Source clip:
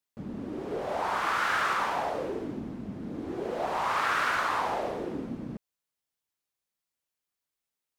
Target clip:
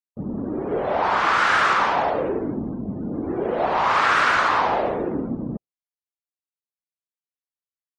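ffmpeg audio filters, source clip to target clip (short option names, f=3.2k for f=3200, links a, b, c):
-af "aresample=32000,aresample=44100,acontrast=88,afftdn=nr=27:nf=-43,volume=2dB"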